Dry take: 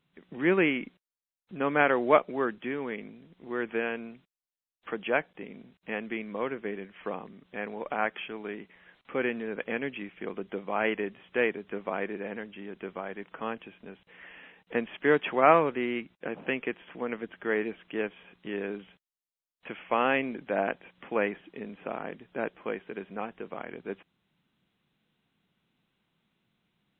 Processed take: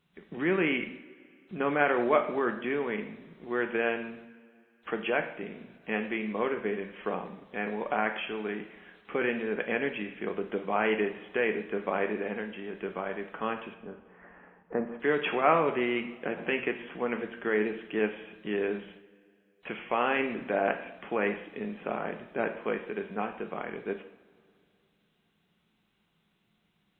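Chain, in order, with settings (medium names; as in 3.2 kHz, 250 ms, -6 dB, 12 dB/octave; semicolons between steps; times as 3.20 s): 13.74–15.00 s: low-pass 1.4 kHz 24 dB/octave; in parallel at -2 dB: compressor with a negative ratio -29 dBFS, ratio -0.5; on the sum: two-slope reverb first 0.65 s, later 2.5 s, from -18 dB, DRR 5 dB; trim -4.5 dB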